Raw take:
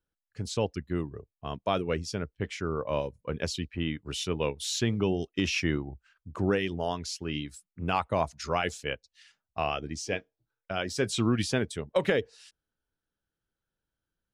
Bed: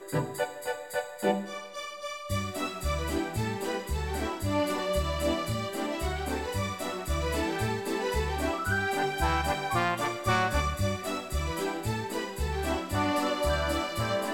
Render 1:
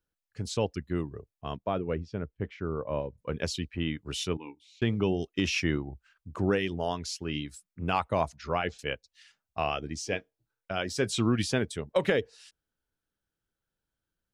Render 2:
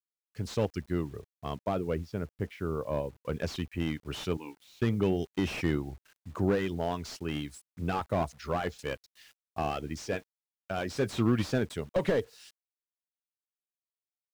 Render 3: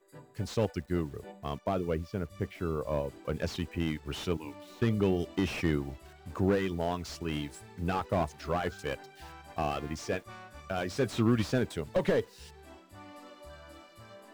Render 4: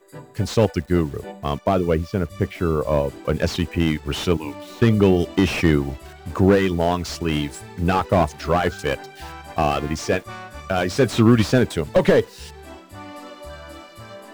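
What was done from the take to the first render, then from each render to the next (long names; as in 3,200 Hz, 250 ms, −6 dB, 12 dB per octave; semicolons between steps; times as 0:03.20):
0:01.57–0:03.18: head-to-tape spacing loss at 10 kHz 36 dB; 0:04.37–0:04.82: formant filter u; 0:08.36–0:08.79: high-frequency loss of the air 210 metres
bit reduction 10 bits; slew-rate limiting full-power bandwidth 42 Hz
mix in bed −22 dB
level +12 dB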